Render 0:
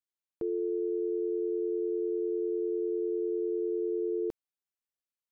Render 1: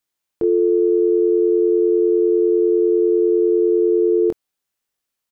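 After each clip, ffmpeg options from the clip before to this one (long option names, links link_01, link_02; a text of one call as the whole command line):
ffmpeg -i in.wav -filter_complex "[0:a]asplit=2[link_01][link_02];[link_02]adelay=23,volume=-7dB[link_03];[link_01][link_03]amix=inputs=2:normalize=0,acontrast=72,volume=6dB" out.wav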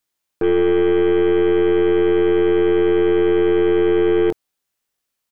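ffmpeg -i in.wav -af "aeval=exprs='0.335*(cos(1*acos(clip(val(0)/0.335,-1,1)))-cos(1*PI/2))+0.0299*(cos(4*acos(clip(val(0)/0.335,-1,1)))-cos(4*PI/2))+0.0211*(cos(5*acos(clip(val(0)/0.335,-1,1)))-cos(5*PI/2))+0.0211*(cos(8*acos(clip(val(0)/0.335,-1,1)))-cos(8*PI/2))':channel_layout=same" out.wav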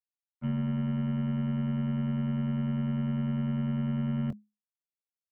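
ffmpeg -i in.wav -filter_complex "[0:a]agate=range=-33dB:threshold=-9dB:ratio=3:detection=peak,acrossover=split=300|1300|2600[link_01][link_02][link_03][link_04];[link_01]acompressor=threshold=-35dB:ratio=4[link_05];[link_02]acompressor=threshold=-25dB:ratio=4[link_06];[link_03]acompressor=threshold=-56dB:ratio=4[link_07];[link_04]acompressor=threshold=-55dB:ratio=4[link_08];[link_05][link_06][link_07][link_08]amix=inputs=4:normalize=0,afreqshift=-210,volume=-4dB" out.wav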